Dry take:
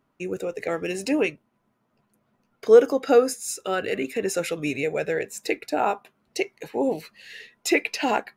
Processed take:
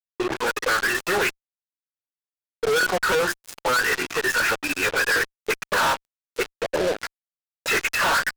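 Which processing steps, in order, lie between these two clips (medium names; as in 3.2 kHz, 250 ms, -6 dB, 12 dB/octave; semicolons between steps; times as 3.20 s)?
formant-preserving pitch shift -7 st; auto-wah 370–1500 Hz, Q 6.3, up, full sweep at -26 dBFS; hum notches 50/100/150/200/250/300/350/400 Hz; fuzz box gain 58 dB, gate -55 dBFS; trim -5.5 dB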